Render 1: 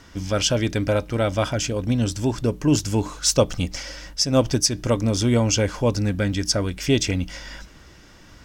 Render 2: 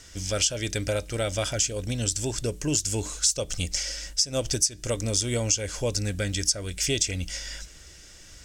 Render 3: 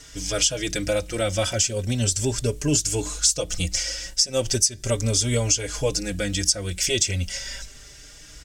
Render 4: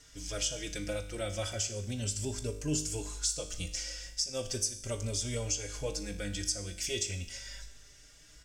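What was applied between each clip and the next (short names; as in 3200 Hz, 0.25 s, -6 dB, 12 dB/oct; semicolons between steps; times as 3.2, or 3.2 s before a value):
ten-band EQ 125 Hz -5 dB, 250 Hz -10 dB, 1000 Hz -11 dB, 8000 Hz +12 dB; compressor 6:1, threshold -21 dBFS, peak gain reduction 13.5 dB
endless flanger 4.5 ms +0.37 Hz; gain +6.5 dB
resonator 51 Hz, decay 0.76 s, harmonics all, mix 70%; gain -5 dB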